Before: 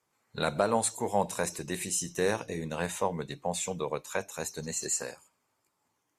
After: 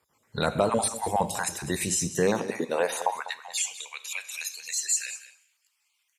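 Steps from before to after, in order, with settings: random holes in the spectrogram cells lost 28%; Schroeder reverb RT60 0.75 s, combs from 29 ms, DRR 16.5 dB; in parallel at +1.5 dB: peak limiter -25.5 dBFS, peak gain reduction 10.5 dB; on the sum: high-pass sweep 62 Hz -> 2.6 kHz, 1.87–3.61 s; on a send: delay 198 ms -14.5 dB

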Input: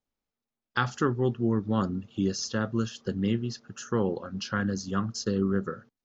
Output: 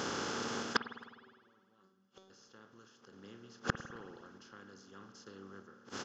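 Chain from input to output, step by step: spectral levelling over time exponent 0.4; high-pass 49 Hz; bass shelf 250 Hz -10 dB; inverted gate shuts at -24 dBFS, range -40 dB; random-step tremolo 1.6 Hz; 0.81–2.30 s: feedback comb 190 Hz, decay 0.62 s, harmonics all, mix 90%; speakerphone echo 270 ms, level -28 dB; spring tank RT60 1.6 s, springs 51 ms, chirp 45 ms, DRR 10.5 dB; trim +14 dB

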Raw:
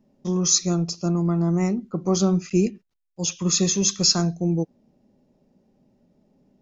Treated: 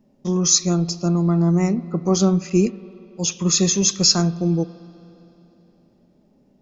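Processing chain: spring tank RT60 3.3 s, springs 47/57 ms, chirp 55 ms, DRR 17 dB; trim +3 dB

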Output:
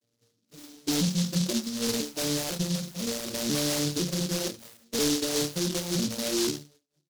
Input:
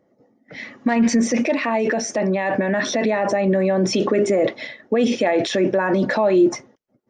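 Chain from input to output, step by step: vocoder on a broken chord major triad, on A#2, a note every 498 ms; on a send: delay 90 ms -21 dB; on the sum: rotary cabinet horn 0.8 Hz; chord resonator D2 major, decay 0.25 s; saturation -27.5 dBFS, distortion -13 dB; touch-sensitive flanger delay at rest 7.1 ms, full sweep at -33.5 dBFS; 1.35–2.01 s: tilt shelf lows +4 dB, about 720 Hz; delay time shaken by noise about 4.8 kHz, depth 0.29 ms; trim +6.5 dB

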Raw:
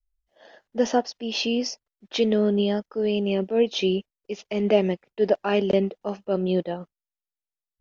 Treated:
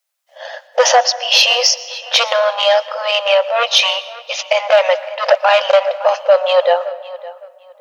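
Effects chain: saturation -17 dBFS, distortion -13 dB; brick-wall FIR high-pass 500 Hz; filtered feedback delay 561 ms, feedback 25%, low-pass 3.7 kHz, level -18 dB; on a send at -17.5 dB: reverberation RT60 1.4 s, pre-delay 109 ms; on the sum: loudness maximiser +22 dB; trim -1 dB

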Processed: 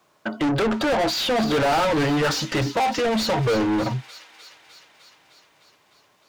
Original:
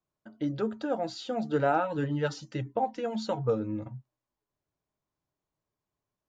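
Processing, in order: 2.93–3.45 s: peaking EQ 790 Hz -6 dB 2.9 oct; overdrive pedal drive 38 dB, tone 3.4 kHz, clips at -14 dBFS; feedback echo behind a high-pass 304 ms, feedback 71%, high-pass 2.3 kHz, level -11 dB

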